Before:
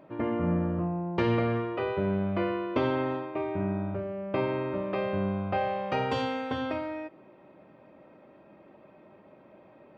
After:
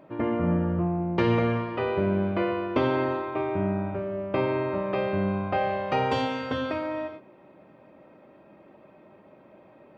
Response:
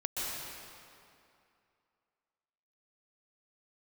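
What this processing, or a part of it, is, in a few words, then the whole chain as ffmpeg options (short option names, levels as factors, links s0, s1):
keyed gated reverb: -filter_complex "[0:a]asplit=3[s0][s1][s2];[1:a]atrim=start_sample=2205[s3];[s1][s3]afir=irnorm=-1:irlink=0[s4];[s2]apad=whole_len=439859[s5];[s4][s5]sidechaingate=range=0.0224:threshold=0.00398:ratio=16:detection=peak,volume=0.2[s6];[s0][s6]amix=inputs=2:normalize=0,volume=1.19"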